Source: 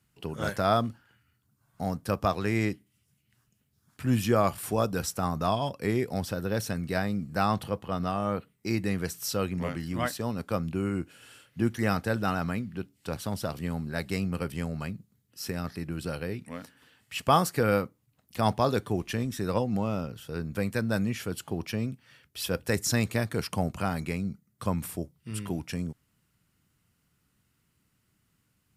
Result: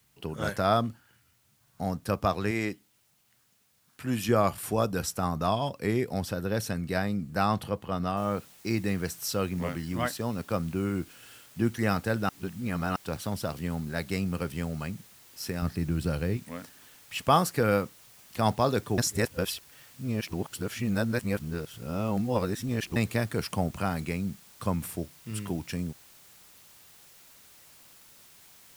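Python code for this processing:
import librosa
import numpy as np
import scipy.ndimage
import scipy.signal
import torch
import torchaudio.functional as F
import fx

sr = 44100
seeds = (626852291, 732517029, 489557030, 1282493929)

y = fx.low_shelf(x, sr, hz=160.0, db=-11.5, at=(2.51, 4.29))
y = fx.noise_floor_step(y, sr, seeds[0], at_s=8.17, before_db=-69, after_db=-55, tilt_db=0.0)
y = fx.low_shelf(y, sr, hz=200.0, db=10.5, at=(15.62, 16.37))
y = fx.edit(y, sr, fx.reverse_span(start_s=12.29, length_s=0.67),
    fx.reverse_span(start_s=18.98, length_s=3.98), tone=tone)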